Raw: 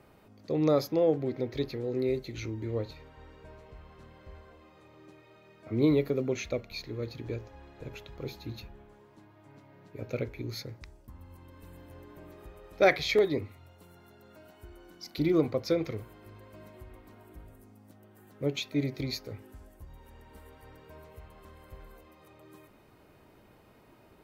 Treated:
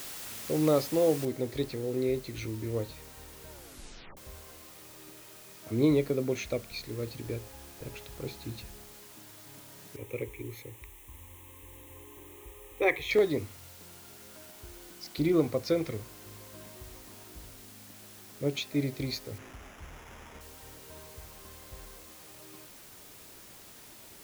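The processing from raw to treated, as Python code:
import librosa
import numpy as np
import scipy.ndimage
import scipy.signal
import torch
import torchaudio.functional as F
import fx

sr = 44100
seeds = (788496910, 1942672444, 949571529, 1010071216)

y = fx.noise_floor_step(x, sr, seeds[0], at_s=1.25, before_db=-42, after_db=-52, tilt_db=0.0)
y = fx.fixed_phaser(y, sr, hz=970.0, stages=8, at=(9.96, 13.11))
y = fx.sample_hold(y, sr, seeds[1], rate_hz=4300.0, jitter_pct=0, at=(19.38, 20.41))
y = fx.edit(y, sr, fx.tape_stop(start_s=3.5, length_s=0.67), tone=tone)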